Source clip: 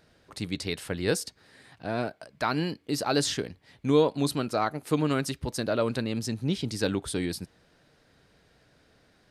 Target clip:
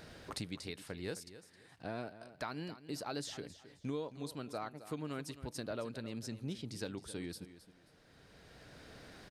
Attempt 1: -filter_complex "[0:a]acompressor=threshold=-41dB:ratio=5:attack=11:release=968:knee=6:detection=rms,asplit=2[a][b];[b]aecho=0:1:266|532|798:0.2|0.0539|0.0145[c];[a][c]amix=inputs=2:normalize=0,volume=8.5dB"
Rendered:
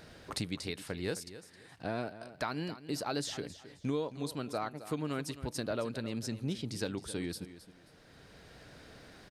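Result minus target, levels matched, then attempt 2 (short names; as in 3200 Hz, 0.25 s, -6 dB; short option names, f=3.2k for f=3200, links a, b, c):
compressor: peak gain reduction -5.5 dB
-filter_complex "[0:a]acompressor=threshold=-48dB:ratio=5:attack=11:release=968:knee=6:detection=rms,asplit=2[a][b];[b]aecho=0:1:266|532|798:0.2|0.0539|0.0145[c];[a][c]amix=inputs=2:normalize=0,volume=8.5dB"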